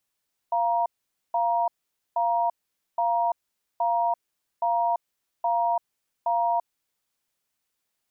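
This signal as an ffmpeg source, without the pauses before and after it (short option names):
-f lavfi -i "aevalsrc='0.0668*(sin(2*PI*693*t)+sin(2*PI*943*t))*clip(min(mod(t,0.82),0.34-mod(t,0.82))/0.005,0,1)':d=6.23:s=44100"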